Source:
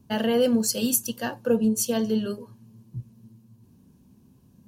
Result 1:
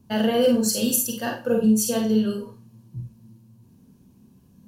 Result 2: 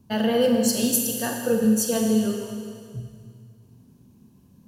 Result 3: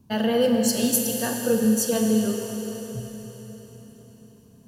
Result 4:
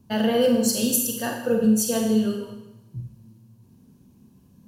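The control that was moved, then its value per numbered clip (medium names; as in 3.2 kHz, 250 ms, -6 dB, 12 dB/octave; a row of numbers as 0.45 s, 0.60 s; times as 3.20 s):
Schroeder reverb, RT60: 0.31 s, 2.1 s, 4.4 s, 0.91 s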